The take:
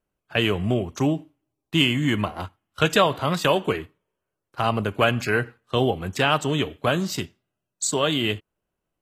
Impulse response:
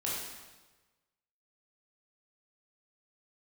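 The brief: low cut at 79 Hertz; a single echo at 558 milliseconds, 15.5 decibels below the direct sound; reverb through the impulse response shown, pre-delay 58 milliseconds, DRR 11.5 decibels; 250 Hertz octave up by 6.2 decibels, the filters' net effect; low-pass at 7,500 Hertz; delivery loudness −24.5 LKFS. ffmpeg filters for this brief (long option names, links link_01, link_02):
-filter_complex "[0:a]highpass=79,lowpass=7500,equalizer=frequency=250:width_type=o:gain=8,aecho=1:1:558:0.168,asplit=2[link_01][link_02];[1:a]atrim=start_sample=2205,adelay=58[link_03];[link_02][link_03]afir=irnorm=-1:irlink=0,volume=-16dB[link_04];[link_01][link_04]amix=inputs=2:normalize=0,volume=-4dB"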